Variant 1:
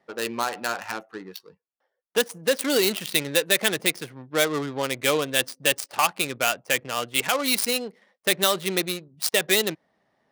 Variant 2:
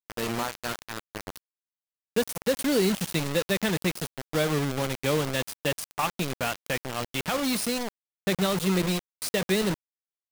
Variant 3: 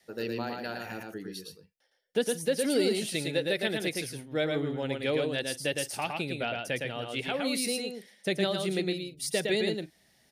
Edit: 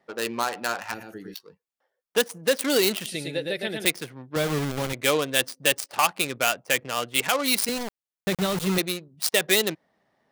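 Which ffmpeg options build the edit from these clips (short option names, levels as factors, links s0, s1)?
-filter_complex "[2:a]asplit=2[s0][s1];[1:a]asplit=2[s2][s3];[0:a]asplit=5[s4][s5][s6][s7][s8];[s4]atrim=end=0.942[s9];[s0]atrim=start=0.938:end=1.342[s10];[s5]atrim=start=1.338:end=3.062[s11];[s1]atrim=start=3.058:end=3.852[s12];[s6]atrim=start=3.848:end=4.362[s13];[s2]atrim=start=4.358:end=4.932[s14];[s7]atrim=start=4.928:end=7.692[s15];[s3]atrim=start=7.688:end=8.782[s16];[s8]atrim=start=8.778[s17];[s9][s10]acrossfade=d=0.004:c1=hsin:c2=hsin[s18];[s18][s11]acrossfade=d=0.004:c1=hsin:c2=hsin[s19];[s19][s12]acrossfade=d=0.004:c1=hsin:c2=hsin[s20];[s20][s13]acrossfade=d=0.004:c1=hsin:c2=hsin[s21];[s21][s14]acrossfade=d=0.004:c1=hsin:c2=hsin[s22];[s22][s15]acrossfade=d=0.004:c1=hsin:c2=hsin[s23];[s23][s16]acrossfade=d=0.004:c1=hsin:c2=hsin[s24];[s24][s17]acrossfade=d=0.004:c1=hsin:c2=hsin"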